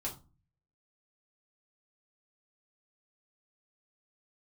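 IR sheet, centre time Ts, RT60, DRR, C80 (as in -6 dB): 16 ms, 0.30 s, -5.0 dB, 17.5 dB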